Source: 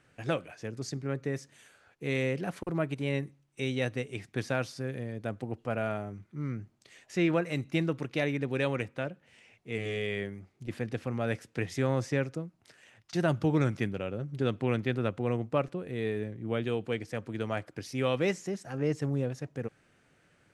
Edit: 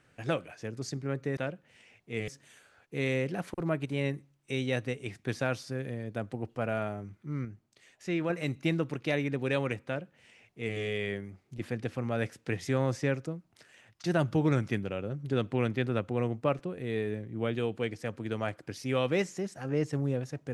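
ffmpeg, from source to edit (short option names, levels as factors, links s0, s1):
-filter_complex "[0:a]asplit=5[s0][s1][s2][s3][s4];[s0]atrim=end=1.372[s5];[s1]atrim=start=8.948:end=9.862[s6];[s2]atrim=start=1.368:end=6.542[s7];[s3]atrim=start=6.538:end=7.392,asetpts=PTS-STARTPTS,volume=0.596[s8];[s4]atrim=start=7.388[s9];[s5][s6]acrossfade=d=0.004:c1=hsin:c2=hsin[s10];[s10][s7]acrossfade=d=0.004:c1=hsin:c2=hsin[s11];[s11][s8]acrossfade=d=0.004:c1=hsin:c2=hsin[s12];[s12][s9]acrossfade=d=0.004:c1=hsin:c2=hsin"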